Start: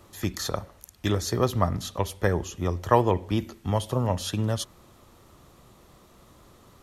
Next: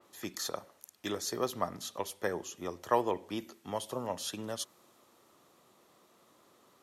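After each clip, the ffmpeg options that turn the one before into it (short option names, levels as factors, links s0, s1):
-af "highpass=270,adynamicequalizer=threshold=0.00794:dfrequency=4200:dqfactor=0.7:tfrequency=4200:tqfactor=0.7:attack=5:release=100:ratio=0.375:range=2:mode=boostabove:tftype=highshelf,volume=0.422"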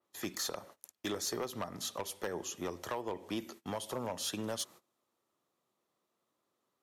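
-af "agate=range=0.0794:threshold=0.002:ratio=16:detection=peak,acompressor=threshold=0.0178:ratio=12,volume=47.3,asoftclip=hard,volume=0.0211,volume=1.5"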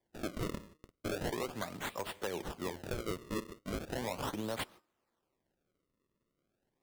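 -af "bandreject=f=306.1:t=h:w=4,bandreject=f=612.2:t=h:w=4,bandreject=f=918.3:t=h:w=4,bandreject=f=1224.4:t=h:w=4,bandreject=f=1530.5:t=h:w=4,bandreject=f=1836.6:t=h:w=4,acrusher=samples=32:mix=1:aa=0.000001:lfo=1:lforange=51.2:lforate=0.37"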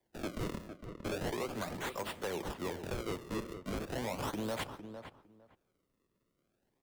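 -filter_complex "[0:a]acrossover=split=180|960[s0][s1][s2];[s2]asoftclip=type=hard:threshold=0.0211[s3];[s0][s1][s3]amix=inputs=3:normalize=0,asplit=2[s4][s5];[s5]adelay=456,lowpass=f=1800:p=1,volume=0.282,asplit=2[s6][s7];[s7]adelay=456,lowpass=f=1800:p=1,volume=0.18[s8];[s4][s6][s8]amix=inputs=3:normalize=0,asoftclip=type=tanh:threshold=0.0251,volume=1.33"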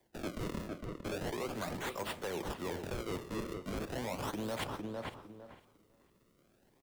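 -af "areverse,acompressor=threshold=0.00398:ratio=4,areverse,aecho=1:1:504|1008:0.1|0.021,volume=3.16"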